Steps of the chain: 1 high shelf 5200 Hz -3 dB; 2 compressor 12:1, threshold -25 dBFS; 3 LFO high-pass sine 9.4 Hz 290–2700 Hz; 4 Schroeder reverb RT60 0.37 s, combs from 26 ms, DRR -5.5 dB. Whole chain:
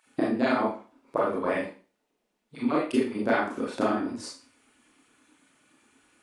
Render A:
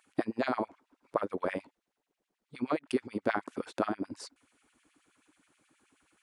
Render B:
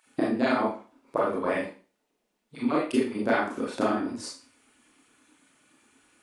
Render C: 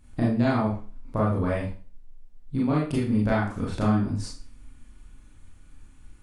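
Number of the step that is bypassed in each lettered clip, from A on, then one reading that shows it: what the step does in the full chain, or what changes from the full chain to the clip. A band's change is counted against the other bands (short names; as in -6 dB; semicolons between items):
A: 4, momentary loudness spread change -2 LU; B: 1, 8 kHz band +2.0 dB; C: 3, 125 Hz band +19.5 dB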